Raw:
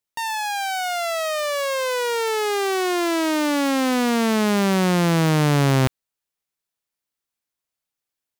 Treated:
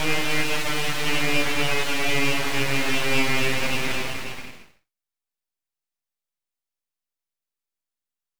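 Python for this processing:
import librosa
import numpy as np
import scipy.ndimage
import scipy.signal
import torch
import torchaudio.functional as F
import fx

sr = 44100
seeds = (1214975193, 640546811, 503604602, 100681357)

y = x * np.sin(2.0 * np.pi * 1200.0 * np.arange(len(x)) / sr)
y = fx.paulstretch(y, sr, seeds[0], factor=7.4, window_s=0.25, from_s=5.34)
y = np.abs(y)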